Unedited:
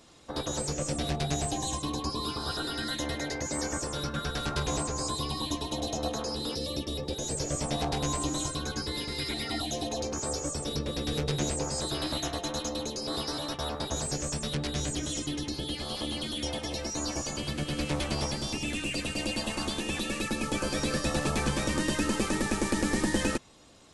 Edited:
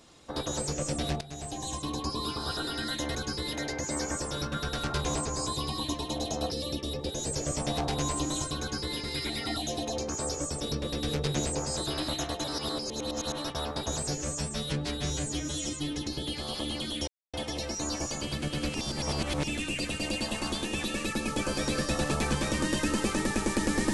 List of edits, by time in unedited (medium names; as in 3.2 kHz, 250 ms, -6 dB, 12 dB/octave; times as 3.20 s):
1.21–2.24 s: fade in equal-power, from -19.5 dB
6.12–6.54 s: delete
8.64–9.02 s: copy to 3.15 s
12.48–13.42 s: reverse
14.12–15.37 s: stretch 1.5×
16.49 s: insert silence 0.26 s
17.90–18.59 s: reverse